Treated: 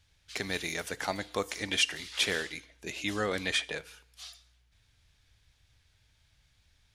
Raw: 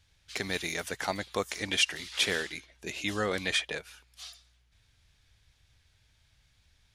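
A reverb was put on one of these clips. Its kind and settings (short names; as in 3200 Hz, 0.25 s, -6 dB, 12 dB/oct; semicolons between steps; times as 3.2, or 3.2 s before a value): FDN reverb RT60 0.65 s, low-frequency decay 0.9×, high-frequency decay 0.95×, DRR 17 dB; gain -1 dB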